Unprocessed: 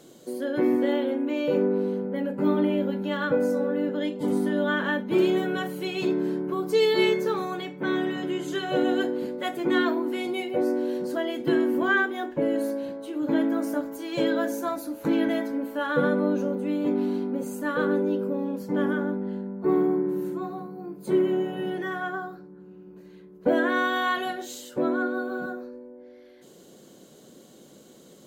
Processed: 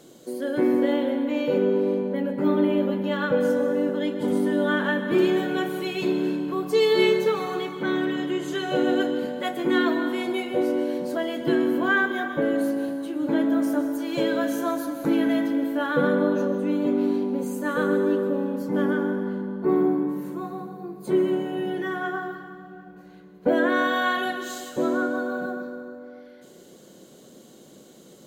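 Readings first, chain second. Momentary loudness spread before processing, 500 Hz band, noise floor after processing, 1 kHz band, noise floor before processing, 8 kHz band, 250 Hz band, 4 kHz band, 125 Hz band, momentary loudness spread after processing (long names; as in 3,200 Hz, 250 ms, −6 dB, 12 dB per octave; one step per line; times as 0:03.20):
9 LU, +2.0 dB, −49 dBFS, +1.5 dB, −51 dBFS, +1.5 dB, +2.0 dB, +1.5 dB, +1.0 dB, 8 LU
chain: dense smooth reverb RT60 2.2 s, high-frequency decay 0.85×, pre-delay 110 ms, DRR 7.5 dB
level +1 dB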